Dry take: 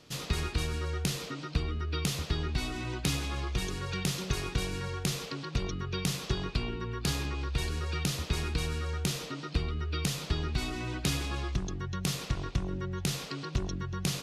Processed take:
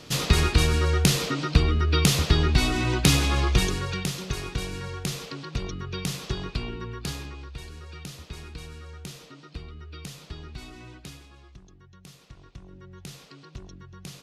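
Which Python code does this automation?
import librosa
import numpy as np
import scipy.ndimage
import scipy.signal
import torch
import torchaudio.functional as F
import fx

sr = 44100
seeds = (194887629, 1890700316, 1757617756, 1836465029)

y = fx.gain(x, sr, db=fx.line((3.57, 11.0), (4.12, 1.0), (6.84, 1.0), (7.62, -8.5), (10.86, -8.5), (11.31, -17.0), (12.2, -17.0), (12.97, -10.0)))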